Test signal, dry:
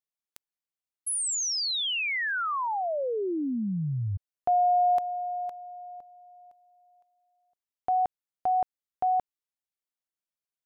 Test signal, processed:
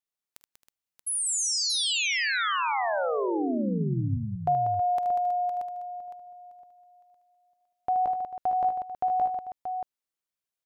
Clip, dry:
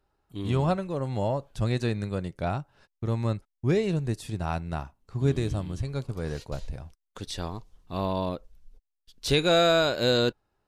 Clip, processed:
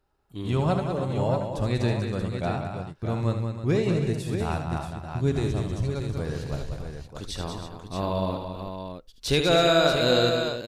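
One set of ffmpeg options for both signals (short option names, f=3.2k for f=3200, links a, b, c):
-af "aecho=1:1:48|76|191|269|321|630:0.141|0.398|0.447|0.15|0.266|0.422"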